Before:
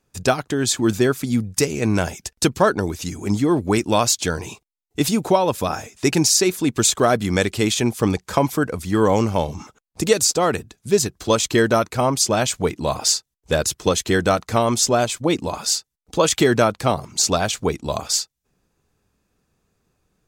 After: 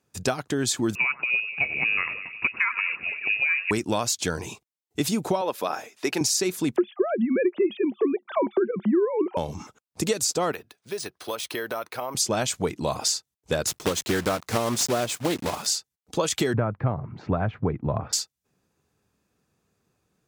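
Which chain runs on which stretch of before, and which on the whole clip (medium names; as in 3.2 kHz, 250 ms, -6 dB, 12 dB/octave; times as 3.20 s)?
0.95–3.71 s: two-band feedback delay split 740 Hz, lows 240 ms, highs 93 ms, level -15.5 dB + frequency inversion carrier 2.7 kHz
5.41–6.21 s: high-pass 360 Hz + peaking EQ 7.7 kHz -9 dB 0.9 oct
6.76–9.37 s: formants replaced by sine waves + small resonant body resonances 210/360 Hz, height 17 dB, ringing for 65 ms
10.52–12.15 s: three-band isolator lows -16 dB, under 410 Hz, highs -13 dB, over 5.9 kHz + compression 4:1, threshold -25 dBFS + careless resampling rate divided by 3×, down filtered, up hold
13.67–15.68 s: block-companded coder 3-bit + loudspeaker Doppler distortion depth 0.19 ms
16.53–18.13 s: low-pass 1.9 kHz 24 dB/octave + peaking EQ 110 Hz +12.5 dB 1.4 oct
whole clip: high-pass 83 Hz; compression, threshold -18 dBFS; trim -2.5 dB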